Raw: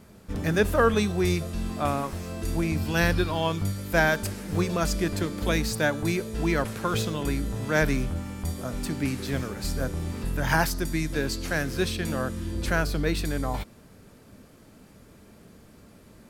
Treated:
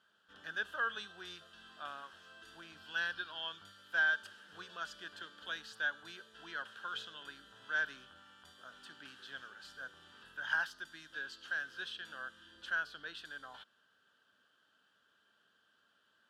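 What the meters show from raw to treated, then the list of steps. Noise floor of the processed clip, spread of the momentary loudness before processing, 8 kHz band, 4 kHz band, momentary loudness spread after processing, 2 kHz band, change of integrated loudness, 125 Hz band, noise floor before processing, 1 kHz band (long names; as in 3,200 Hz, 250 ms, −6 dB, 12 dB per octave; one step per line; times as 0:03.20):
−74 dBFS, 9 LU, −24.5 dB, −9.5 dB, 18 LU, −6.0 dB, −12.5 dB, −39.5 dB, −52 dBFS, −15.0 dB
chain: pair of resonant band-passes 2,200 Hz, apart 1 octave
level −3.5 dB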